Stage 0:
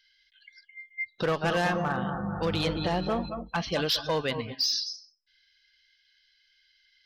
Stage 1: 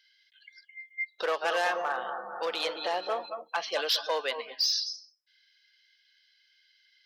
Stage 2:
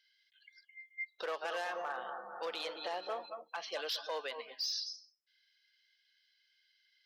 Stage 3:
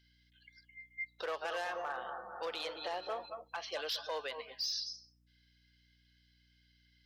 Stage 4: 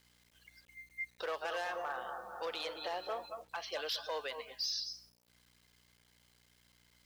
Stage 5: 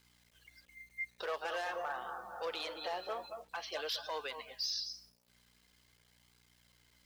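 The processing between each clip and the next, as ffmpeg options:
-af "highpass=f=470:w=0.5412,highpass=f=470:w=1.3066"
-af "alimiter=limit=-21dB:level=0:latency=1:release=81,volume=-7.5dB"
-af "aeval=exprs='val(0)+0.000316*(sin(2*PI*60*n/s)+sin(2*PI*2*60*n/s)/2+sin(2*PI*3*60*n/s)/3+sin(2*PI*4*60*n/s)/4+sin(2*PI*5*60*n/s)/5)':c=same"
-af "acrusher=bits=10:mix=0:aa=0.000001"
-af "flanger=delay=0.8:depth=4.4:regen=-56:speed=0.47:shape=sinusoidal,volume=4dB"

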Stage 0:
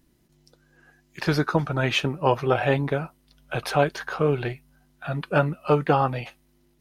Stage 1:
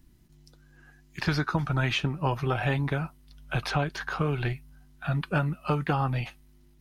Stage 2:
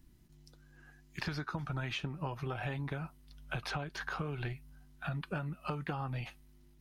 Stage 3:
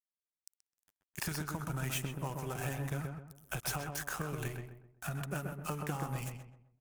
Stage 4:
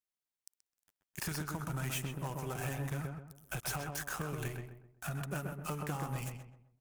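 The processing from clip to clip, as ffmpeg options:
-filter_complex "[0:a]lowshelf=f=120:g=11.5,acrossover=split=560|6900[a][b][c];[a]acompressor=threshold=-24dB:ratio=4[d];[b]acompressor=threshold=-26dB:ratio=4[e];[c]acompressor=threshold=-57dB:ratio=4[f];[d][e][f]amix=inputs=3:normalize=0,equalizer=f=510:t=o:w=0.9:g=-7.5"
-af "acompressor=threshold=-31dB:ratio=6,volume=-3.5dB"
-filter_complex "[0:a]aeval=exprs='sgn(val(0))*max(abs(val(0))-0.00335,0)':c=same,aexciter=amount=8.9:drive=3.9:freq=6.1k,asplit=2[a][b];[b]adelay=129,lowpass=f=1.6k:p=1,volume=-3.5dB,asplit=2[c][d];[d]adelay=129,lowpass=f=1.6k:p=1,volume=0.38,asplit=2[e][f];[f]adelay=129,lowpass=f=1.6k:p=1,volume=0.38,asplit=2[g][h];[h]adelay=129,lowpass=f=1.6k:p=1,volume=0.38,asplit=2[i][j];[j]adelay=129,lowpass=f=1.6k:p=1,volume=0.38[k];[c][e][g][i][k]amix=inputs=5:normalize=0[l];[a][l]amix=inputs=2:normalize=0"
-af "asoftclip=type=hard:threshold=-30.5dB"

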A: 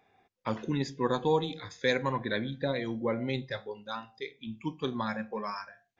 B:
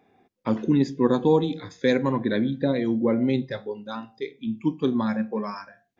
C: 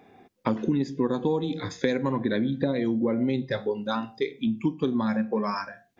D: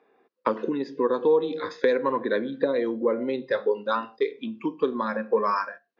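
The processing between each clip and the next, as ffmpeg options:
-af "equalizer=f=260:t=o:w=1.9:g=12.5"
-af "acompressor=threshold=-30dB:ratio=6,volume=7.5dB"
-af "agate=range=-10dB:threshold=-43dB:ratio=16:detection=peak,highpass=460,equalizer=f=470:t=q:w=4:g=6,equalizer=f=750:t=q:w=4:g=-9,equalizer=f=1.1k:t=q:w=4:g=4,equalizer=f=2.2k:t=q:w=4:g=-7,equalizer=f=3.4k:t=q:w=4:g=-8,lowpass=f=4.2k:w=0.5412,lowpass=f=4.2k:w=1.3066,volume=5dB"

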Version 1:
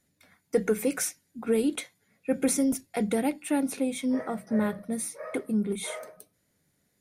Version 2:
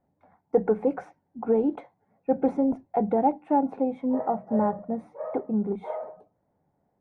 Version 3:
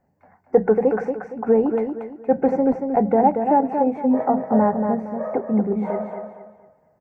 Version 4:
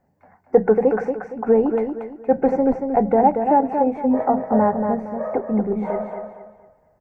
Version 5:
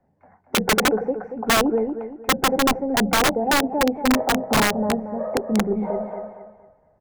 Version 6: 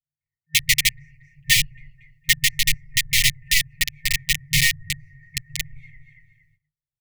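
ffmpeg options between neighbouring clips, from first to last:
-af "lowpass=f=830:t=q:w=4.6"
-filter_complex "[0:a]superequalizer=6b=0.631:11b=1.78:13b=0.282:16b=0.316,asplit=2[a][b];[b]aecho=0:1:232|464|696|928:0.501|0.16|0.0513|0.0164[c];[a][c]amix=inputs=2:normalize=0,volume=6dB"
-af "asubboost=boost=4.5:cutoff=70,volume=1.5dB"
-filter_complex "[0:a]lowpass=f=1.8k:p=1,acrossover=split=160|920[a][b][c];[c]acompressor=threshold=-40dB:ratio=12[d];[a][b][d]amix=inputs=3:normalize=0,aeval=exprs='(mod(3.98*val(0)+1,2)-1)/3.98':c=same"
-af "agate=range=-33dB:threshold=-46dB:ratio=16:detection=peak,afftfilt=real='re*(1-between(b*sr/4096,160,1800))':imag='im*(1-between(b*sr/4096,160,1800))':win_size=4096:overlap=0.75,aecho=1:1:7:0.87,volume=3dB"

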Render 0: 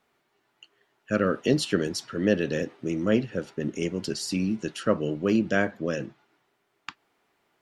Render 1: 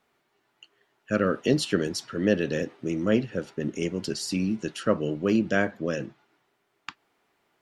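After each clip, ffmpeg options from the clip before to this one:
-af anull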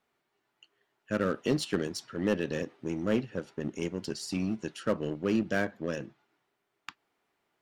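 -filter_complex "[0:a]asplit=2[a][b];[b]acrusher=bits=3:mix=0:aa=0.5,volume=-10.5dB[c];[a][c]amix=inputs=2:normalize=0,asoftclip=type=hard:threshold=-11dB,volume=-7dB"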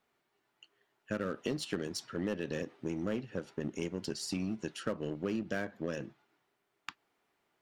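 -af "acompressor=threshold=-31dB:ratio=6"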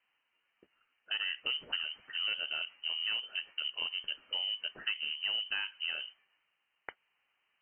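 -af "lowpass=f=2.7k:t=q:w=0.5098,lowpass=f=2.7k:t=q:w=0.6013,lowpass=f=2.7k:t=q:w=0.9,lowpass=f=2.7k:t=q:w=2.563,afreqshift=-3200"

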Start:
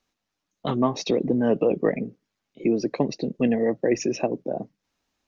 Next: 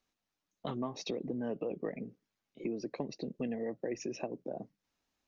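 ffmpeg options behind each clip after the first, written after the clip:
-af "acompressor=threshold=-31dB:ratio=2.5,volume=-6.5dB"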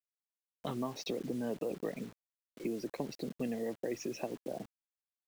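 -af "acrusher=bits=8:mix=0:aa=0.000001"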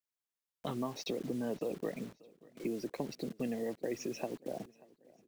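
-af "aecho=1:1:586|1172|1758:0.0708|0.029|0.0119"

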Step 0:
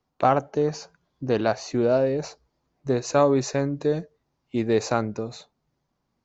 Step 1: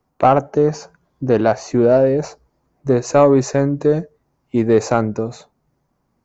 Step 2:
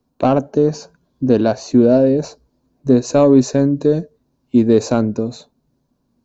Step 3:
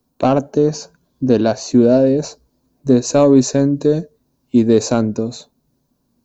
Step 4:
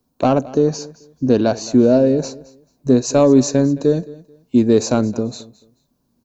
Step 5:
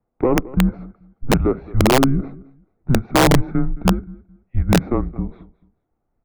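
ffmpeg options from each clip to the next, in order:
-af "equalizer=f=3.7k:w=0.98:g=-10,acontrast=72,volume=2dB"
-af "equalizer=f=250:t=o:w=0.33:g=9,equalizer=f=800:t=o:w=0.33:g=-7,equalizer=f=1.25k:t=o:w=0.33:g=-8,equalizer=f=2k:t=o:w=0.33:g=-11,equalizer=f=4k:t=o:w=0.33:g=7"
-af "crystalizer=i=1.5:c=0"
-af "aecho=1:1:218|436:0.1|0.023,volume=-1dB"
-af "highpass=f=270:t=q:w=0.5412,highpass=f=270:t=q:w=1.307,lowpass=f=2.2k:t=q:w=0.5176,lowpass=f=2.2k:t=q:w=0.7071,lowpass=f=2.2k:t=q:w=1.932,afreqshift=-260,aeval=exprs='(mod(2.11*val(0)+1,2)-1)/2.11':c=same"

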